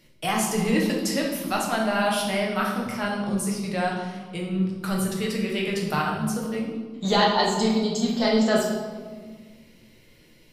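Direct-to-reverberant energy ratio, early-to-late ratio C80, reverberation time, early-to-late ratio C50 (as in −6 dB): −2.5 dB, 5.5 dB, 1.6 s, 3.0 dB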